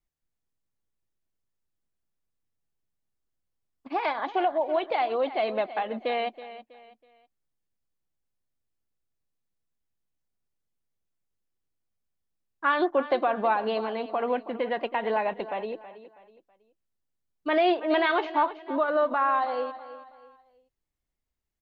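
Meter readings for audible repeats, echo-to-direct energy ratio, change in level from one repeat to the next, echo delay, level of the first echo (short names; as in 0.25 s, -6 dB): 3, -14.0 dB, -9.5 dB, 0.324 s, -14.5 dB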